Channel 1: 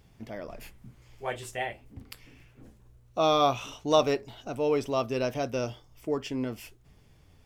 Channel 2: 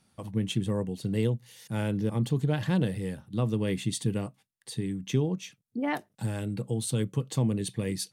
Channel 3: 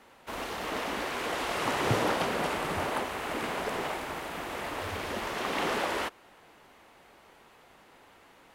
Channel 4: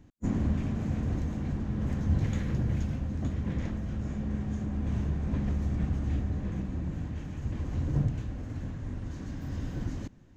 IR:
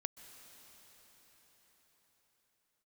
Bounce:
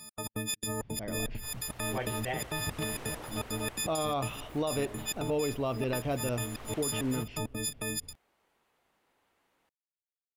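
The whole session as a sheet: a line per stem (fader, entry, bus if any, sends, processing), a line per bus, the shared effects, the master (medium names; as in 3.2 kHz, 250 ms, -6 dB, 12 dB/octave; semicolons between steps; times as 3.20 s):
-4.0 dB, 0.70 s, send -15 dB, low-pass 4 kHz 24 dB/octave; bass shelf 150 Hz +12 dB
-4.0 dB, 0.00 s, no send, partials quantised in pitch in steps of 6 st; trance gate "x.x.xx.x" 167 bpm -60 dB; spectrum-flattening compressor 2:1
-17.5 dB, 1.15 s, no send, none
mute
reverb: on, pre-delay 118 ms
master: treble shelf 7.7 kHz +6 dB; peak limiter -22.5 dBFS, peak gain reduction 11 dB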